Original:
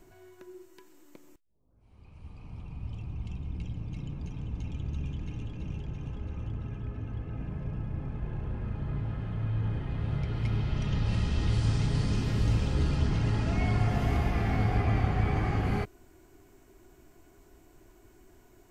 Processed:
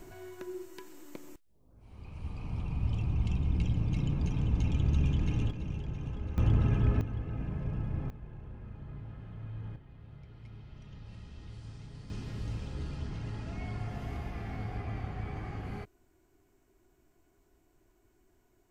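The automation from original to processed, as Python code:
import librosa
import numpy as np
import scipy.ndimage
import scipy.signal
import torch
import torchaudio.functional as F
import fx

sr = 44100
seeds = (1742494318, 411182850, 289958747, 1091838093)

y = fx.gain(x, sr, db=fx.steps((0.0, 7.0), (5.51, 0.0), (6.38, 10.5), (7.01, 0.5), (8.1, -11.0), (9.76, -19.5), (12.1, -11.0)))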